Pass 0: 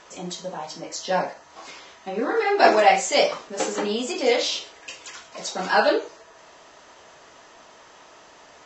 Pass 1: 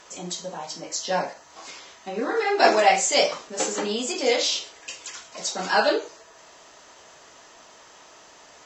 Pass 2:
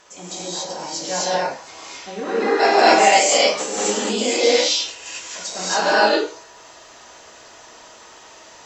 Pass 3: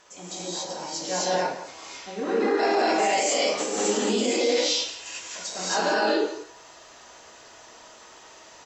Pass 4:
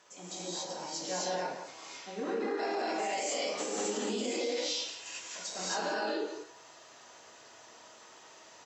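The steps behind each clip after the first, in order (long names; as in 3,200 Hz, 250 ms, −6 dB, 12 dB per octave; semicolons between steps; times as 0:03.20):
high-shelf EQ 6,000 Hz +11.5 dB; level −2 dB
reverb whose tail is shaped and stops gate 300 ms rising, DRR −7.5 dB; level −2.5 dB
dynamic equaliser 310 Hz, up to +6 dB, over −33 dBFS, Q 1.2; brickwall limiter −10 dBFS, peak gain reduction 9.5 dB; slap from a distant wall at 29 metres, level −13 dB; level −4.5 dB
high-pass filter 93 Hz 24 dB per octave; downward compressor, threshold −24 dBFS, peak gain reduction 5.5 dB; level −6 dB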